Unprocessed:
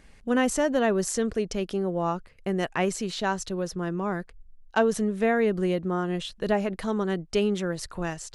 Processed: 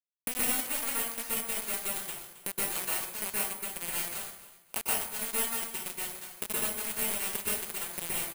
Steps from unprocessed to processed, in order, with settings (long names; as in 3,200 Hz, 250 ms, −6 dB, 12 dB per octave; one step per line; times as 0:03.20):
samples sorted by size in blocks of 16 samples
high-pass filter 63 Hz 6 dB per octave
mains-hum notches 60/120/180/240/300/360/420/480 Hz
downward compressor 8 to 1, threshold −42 dBFS, peak gain reduction 23.5 dB
bit reduction 6 bits
on a send: repeating echo 270 ms, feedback 27%, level −16 dB
on the sum: dense smooth reverb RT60 0.76 s, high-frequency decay 0.75×, pre-delay 110 ms, DRR −7.5 dB
bad sample-rate conversion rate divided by 4×, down filtered, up zero stuff
level +2 dB